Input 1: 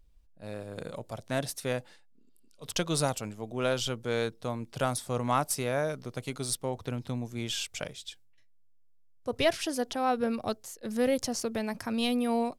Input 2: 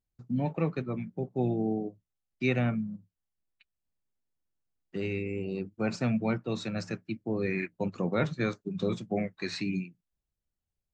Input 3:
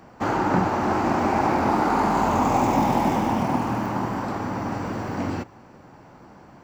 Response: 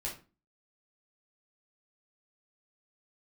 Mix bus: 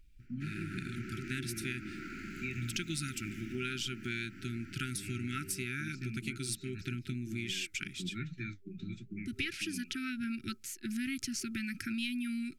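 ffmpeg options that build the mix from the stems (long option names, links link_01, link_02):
-filter_complex "[0:a]volume=1dB[link_01];[1:a]lowshelf=frequency=160:gain=8.5,flanger=delay=5.3:depth=8.8:regen=61:speed=1.2:shape=triangular,volume=-8.5dB[link_02];[2:a]equalizer=frequency=290:width=1.5:gain=-3.5,adelay=200,volume=-17.5dB[link_03];[link_01][link_02][link_03]amix=inputs=3:normalize=0,afftfilt=real='re*(1-between(b*sr/4096,390,1300))':imag='im*(1-between(b*sr/4096,390,1300))':win_size=4096:overlap=0.75,equalizer=frequency=2400:width_type=o:width=0.42:gain=10,acompressor=threshold=-35dB:ratio=4"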